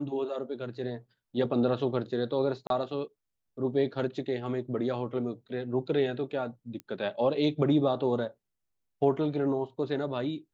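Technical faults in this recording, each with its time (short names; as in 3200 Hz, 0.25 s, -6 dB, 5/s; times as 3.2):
2.67–2.7 gap 32 ms
6.8 pop -26 dBFS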